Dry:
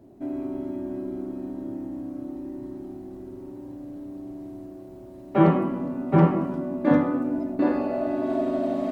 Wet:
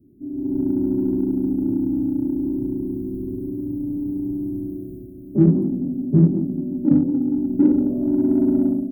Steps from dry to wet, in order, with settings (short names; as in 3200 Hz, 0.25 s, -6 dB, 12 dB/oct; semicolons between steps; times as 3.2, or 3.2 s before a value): inverse Chebyshev band-stop 1300–3600 Hz, stop band 80 dB; AGC gain up to 15.5 dB; in parallel at -11.5 dB: soft clip -17 dBFS, distortion -7 dB; on the sum: gain -3.5 dB